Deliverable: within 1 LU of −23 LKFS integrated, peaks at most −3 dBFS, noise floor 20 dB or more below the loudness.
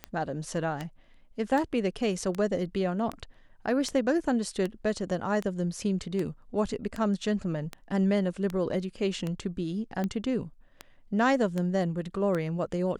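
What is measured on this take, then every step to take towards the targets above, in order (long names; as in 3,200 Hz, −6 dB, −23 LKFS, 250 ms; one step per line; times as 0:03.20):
number of clicks 17; integrated loudness −29.5 LKFS; sample peak −13.0 dBFS; target loudness −23.0 LKFS
→ click removal
level +6.5 dB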